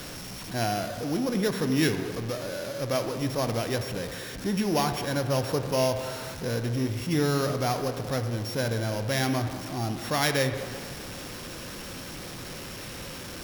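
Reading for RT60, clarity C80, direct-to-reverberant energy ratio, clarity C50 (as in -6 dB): 2.1 s, 9.0 dB, 6.5 dB, 8.0 dB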